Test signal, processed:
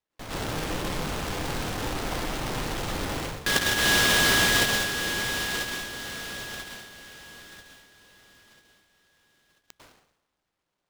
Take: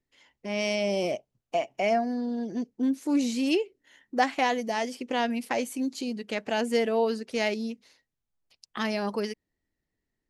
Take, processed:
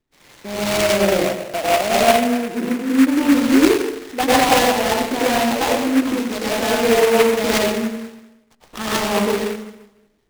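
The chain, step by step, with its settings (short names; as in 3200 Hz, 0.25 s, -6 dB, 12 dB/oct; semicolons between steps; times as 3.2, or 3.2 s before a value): in parallel at 0 dB: compressor, threshold -41 dBFS; on the sum: high shelf 7700 Hz -5 dB; notches 60/120/180/240 Hz; plate-style reverb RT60 0.97 s, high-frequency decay 0.75×, pre-delay 90 ms, DRR -8.5 dB; sample-rate reducer 5300 Hz, jitter 0%; noise-modulated delay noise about 1600 Hz, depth 0.092 ms; gain +1 dB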